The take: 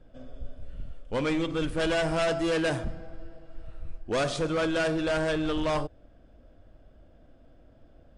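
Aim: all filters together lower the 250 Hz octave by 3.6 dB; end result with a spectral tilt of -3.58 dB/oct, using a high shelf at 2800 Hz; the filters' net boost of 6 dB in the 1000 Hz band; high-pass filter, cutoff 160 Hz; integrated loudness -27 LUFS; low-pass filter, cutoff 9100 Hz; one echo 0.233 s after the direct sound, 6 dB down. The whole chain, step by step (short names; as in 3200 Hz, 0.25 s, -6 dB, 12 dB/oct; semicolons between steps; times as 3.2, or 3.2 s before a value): HPF 160 Hz; LPF 9100 Hz; bell 250 Hz -5.5 dB; bell 1000 Hz +7.5 dB; high shelf 2800 Hz +6.5 dB; echo 0.233 s -6 dB; gain -1.5 dB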